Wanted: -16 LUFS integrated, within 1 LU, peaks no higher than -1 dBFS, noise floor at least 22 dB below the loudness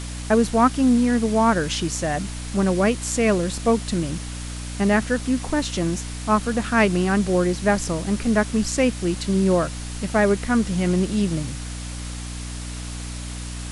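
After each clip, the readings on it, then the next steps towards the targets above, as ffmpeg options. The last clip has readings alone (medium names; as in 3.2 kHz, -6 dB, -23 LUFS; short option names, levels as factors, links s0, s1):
hum 60 Hz; highest harmonic 300 Hz; hum level -30 dBFS; noise floor -32 dBFS; noise floor target -44 dBFS; loudness -21.5 LUFS; peak level -6.0 dBFS; loudness target -16.0 LUFS
-> -af "bandreject=f=60:t=h:w=4,bandreject=f=120:t=h:w=4,bandreject=f=180:t=h:w=4,bandreject=f=240:t=h:w=4,bandreject=f=300:t=h:w=4"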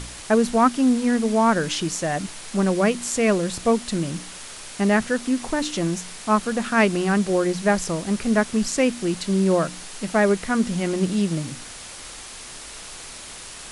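hum not found; noise floor -39 dBFS; noise floor target -44 dBFS
-> -af "afftdn=nr=6:nf=-39"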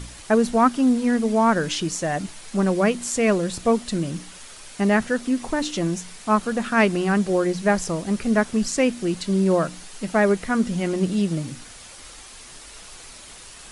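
noise floor -43 dBFS; noise floor target -44 dBFS
-> -af "afftdn=nr=6:nf=-43"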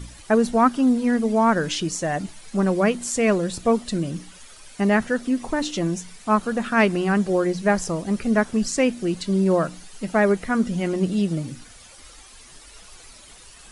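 noise floor -47 dBFS; loudness -22.0 LUFS; peak level -6.0 dBFS; loudness target -16.0 LUFS
-> -af "volume=2,alimiter=limit=0.891:level=0:latency=1"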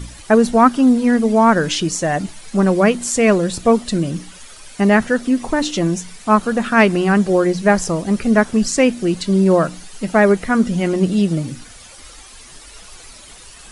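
loudness -16.0 LUFS; peak level -1.0 dBFS; noise floor -41 dBFS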